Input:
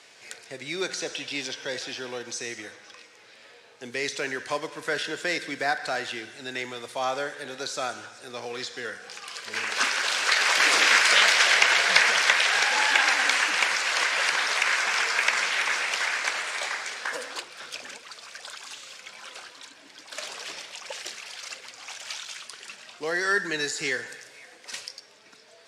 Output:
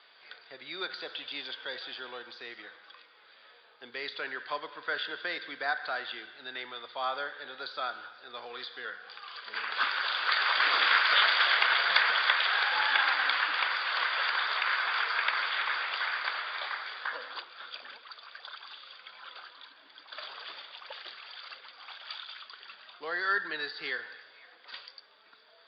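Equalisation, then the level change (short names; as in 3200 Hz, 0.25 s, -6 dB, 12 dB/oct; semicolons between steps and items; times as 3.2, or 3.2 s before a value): HPF 400 Hz 6 dB/oct; rippled Chebyshev low-pass 4800 Hz, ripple 9 dB; 0.0 dB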